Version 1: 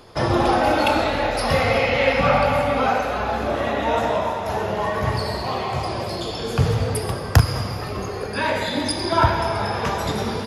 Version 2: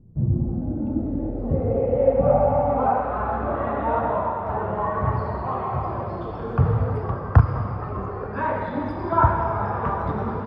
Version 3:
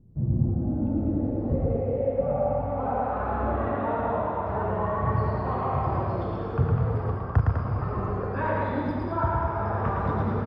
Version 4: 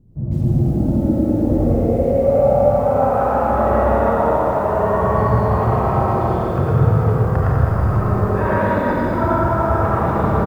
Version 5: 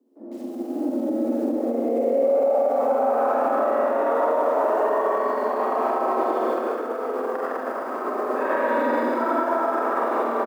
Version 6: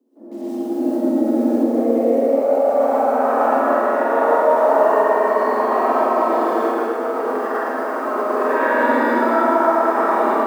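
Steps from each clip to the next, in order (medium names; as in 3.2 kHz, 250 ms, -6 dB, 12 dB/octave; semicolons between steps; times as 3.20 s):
bass shelf 250 Hz +8 dB; low-pass sweep 180 Hz -> 1.2 kHz, 0.49–3.26 s; trim -6.5 dB
gain riding within 4 dB 0.5 s; loudspeakers at several distances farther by 38 m -3 dB, 69 m -6 dB; dynamic bell 1 kHz, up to -3 dB, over -30 dBFS, Q 1.3; trim -5 dB
delay 330 ms -8.5 dB; algorithmic reverb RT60 1.6 s, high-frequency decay 0.3×, pre-delay 45 ms, DRR -3.5 dB; bit-crushed delay 156 ms, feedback 35%, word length 8-bit, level -6.5 dB; trim +3 dB
doubling 47 ms -3 dB; peak limiter -11 dBFS, peak gain reduction 9 dB; steep high-pass 240 Hz 96 dB/octave; trim -1.5 dB
plate-style reverb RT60 0.5 s, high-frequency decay 1×, pre-delay 95 ms, DRR -5.5 dB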